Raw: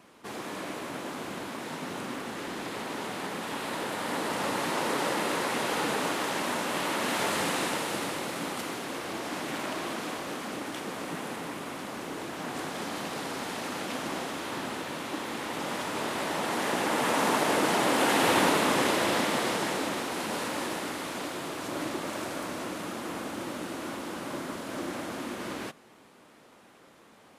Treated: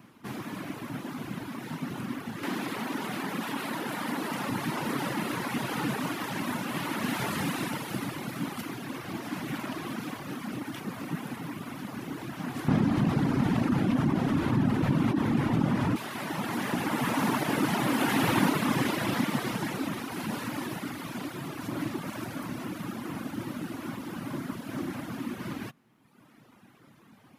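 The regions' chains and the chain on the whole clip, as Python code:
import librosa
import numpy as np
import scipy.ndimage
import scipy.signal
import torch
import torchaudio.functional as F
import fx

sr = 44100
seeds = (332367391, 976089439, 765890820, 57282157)

y = fx.chain(x, sr, fx.highpass(hz=210.0, slope=12),
    fx.env_flatten(amount_pct=70), at=(2.43, 4.5))
y = fx.chain(y, sr, fx.delta_mod(bps=64000, step_db=-39.0),
    fx.tilt_eq(slope=-3.0),
    fx.env_flatten(amount_pct=100), at=(12.68, 15.96))
y = fx.high_shelf(y, sr, hz=4000.0, db=6.0)
y = fx.dereverb_blind(y, sr, rt60_s=1.2)
y = fx.graphic_eq(y, sr, hz=(125, 250, 500, 4000, 8000), db=(12, 6, -7, -4, -10))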